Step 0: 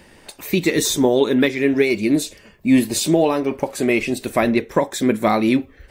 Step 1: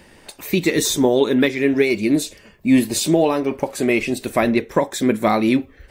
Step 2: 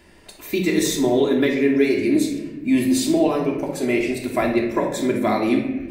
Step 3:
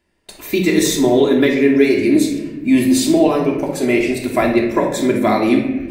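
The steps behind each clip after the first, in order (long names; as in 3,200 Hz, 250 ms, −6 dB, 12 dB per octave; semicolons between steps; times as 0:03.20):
no processing that can be heard
convolution reverb RT60 1.2 s, pre-delay 3 ms, DRR −1 dB; level −6.5 dB
noise gate with hold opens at −34 dBFS; level +5 dB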